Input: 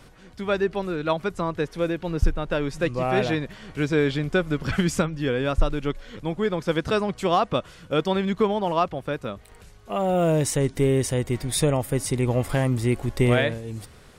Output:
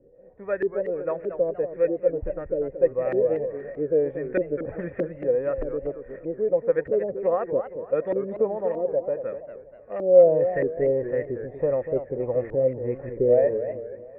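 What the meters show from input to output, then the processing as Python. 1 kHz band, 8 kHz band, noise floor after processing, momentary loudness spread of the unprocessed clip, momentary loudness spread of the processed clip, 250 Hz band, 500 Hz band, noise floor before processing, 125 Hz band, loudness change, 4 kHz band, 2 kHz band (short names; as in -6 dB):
-9.5 dB, under -40 dB, -47 dBFS, 8 LU, 11 LU, -7.5 dB, +4.0 dB, -49 dBFS, -13.0 dB, 0.0 dB, under -35 dB, -11.0 dB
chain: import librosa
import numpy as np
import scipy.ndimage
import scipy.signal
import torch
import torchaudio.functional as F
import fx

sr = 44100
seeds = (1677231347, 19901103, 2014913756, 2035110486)

y = fx.formant_cascade(x, sr, vowel='e')
y = fx.filter_lfo_lowpass(y, sr, shape='saw_up', hz=1.6, low_hz=330.0, high_hz=1900.0, q=2.8)
y = fx.echo_warbled(y, sr, ms=236, feedback_pct=40, rate_hz=2.8, cents=197, wet_db=-10.0)
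y = y * librosa.db_to_amplitude(5.5)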